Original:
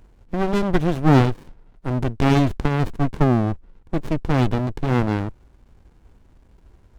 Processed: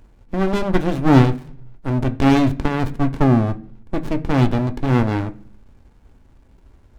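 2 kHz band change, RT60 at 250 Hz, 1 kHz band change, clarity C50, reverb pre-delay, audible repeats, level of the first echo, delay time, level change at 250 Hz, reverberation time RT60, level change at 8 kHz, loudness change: +2.0 dB, 0.75 s, +1.5 dB, 18.0 dB, 3 ms, no echo, no echo, no echo, +3.5 dB, 0.55 s, no reading, +2.5 dB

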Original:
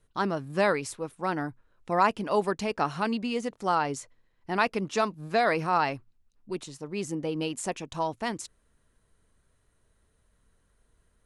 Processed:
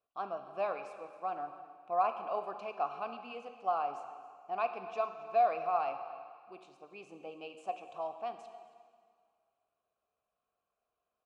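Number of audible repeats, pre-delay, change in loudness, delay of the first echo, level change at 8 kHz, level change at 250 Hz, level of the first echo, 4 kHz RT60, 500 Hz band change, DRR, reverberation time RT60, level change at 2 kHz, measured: 1, 15 ms, -7.5 dB, 276 ms, under -25 dB, -22.0 dB, -19.0 dB, 1.9 s, -7.5 dB, 7.0 dB, 1.9 s, -16.0 dB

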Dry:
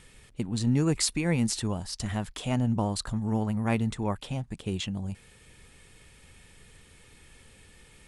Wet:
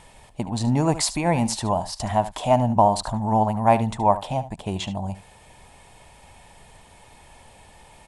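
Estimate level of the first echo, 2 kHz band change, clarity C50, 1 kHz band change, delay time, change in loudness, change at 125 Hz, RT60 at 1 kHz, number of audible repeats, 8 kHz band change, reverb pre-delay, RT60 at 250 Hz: -14.5 dB, +3.0 dB, no reverb, +17.5 dB, 73 ms, +6.5 dB, +3.5 dB, no reverb, 1, +3.0 dB, no reverb, no reverb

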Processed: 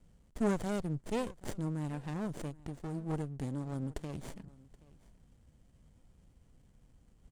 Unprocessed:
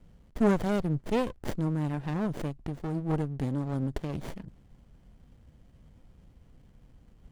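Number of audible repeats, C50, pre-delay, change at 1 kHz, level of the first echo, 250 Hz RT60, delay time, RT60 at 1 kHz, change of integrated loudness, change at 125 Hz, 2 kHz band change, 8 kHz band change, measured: 1, no reverb, no reverb, -7.0 dB, -22.5 dB, no reverb, 776 ms, no reverb, -7.0 dB, -7.0 dB, -6.5 dB, no reading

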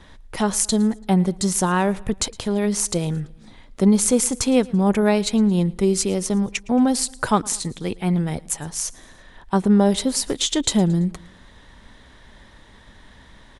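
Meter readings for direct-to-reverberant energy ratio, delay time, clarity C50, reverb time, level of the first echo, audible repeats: no reverb, 112 ms, no reverb, no reverb, -23.5 dB, 2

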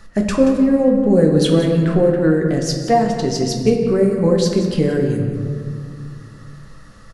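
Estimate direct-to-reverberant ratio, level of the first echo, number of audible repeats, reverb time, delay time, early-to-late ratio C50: 0.5 dB, -12.0 dB, 1, 2.3 s, 180 ms, 4.0 dB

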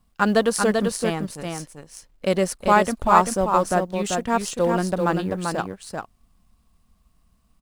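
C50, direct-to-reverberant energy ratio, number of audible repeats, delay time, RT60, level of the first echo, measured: no reverb, no reverb, 1, 390 ms, no reverb, -4.5 dB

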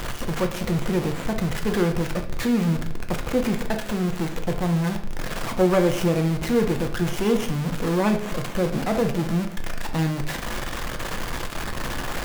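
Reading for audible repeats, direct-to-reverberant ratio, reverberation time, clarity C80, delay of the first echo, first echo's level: no echo, 4.0 dB, 0.65 s, 13.5 dB, no echo, no echo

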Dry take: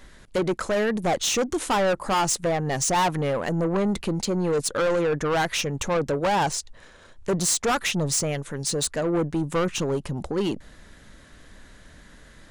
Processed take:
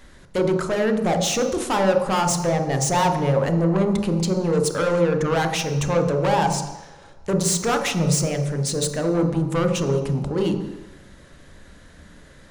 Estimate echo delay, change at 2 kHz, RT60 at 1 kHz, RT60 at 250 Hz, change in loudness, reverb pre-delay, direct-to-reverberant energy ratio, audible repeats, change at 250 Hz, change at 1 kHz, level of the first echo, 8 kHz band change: no echo, +0.5 dB, 1.2 s, 1.0 s, +3.0 dB, 25 ms, 4.5 dB, no echo, +4.5 dB, +2.0 dB, no echo, +0.5 dB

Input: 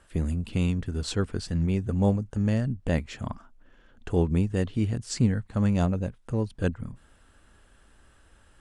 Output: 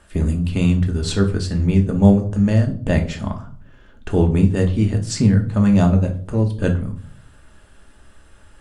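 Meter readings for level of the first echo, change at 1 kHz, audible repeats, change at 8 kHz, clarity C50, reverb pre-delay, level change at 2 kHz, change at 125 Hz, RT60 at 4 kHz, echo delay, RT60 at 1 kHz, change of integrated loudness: no echo, +7.5 dB, no echo, +7.5 dB, 12.5 dB, 3 ms, +8.0 dB, +9.5 dB, 0.35 s, no echo, 0.45 s, +9.5 dB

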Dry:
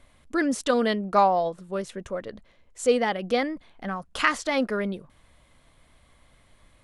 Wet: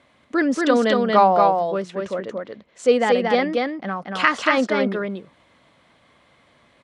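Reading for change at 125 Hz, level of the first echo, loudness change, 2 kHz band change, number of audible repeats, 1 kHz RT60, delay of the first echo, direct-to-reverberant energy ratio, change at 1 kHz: +5.0 dB, -3.0 dB, +6.0 dB, +6.0 dB, 1, no reverb, 231 ms, no reverb, +6.5 dB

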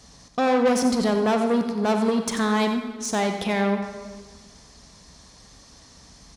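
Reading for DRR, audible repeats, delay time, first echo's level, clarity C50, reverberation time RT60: 5.0 dB, 1, 90 ms, -10.0 dB, 5.5 dB, 1.6 s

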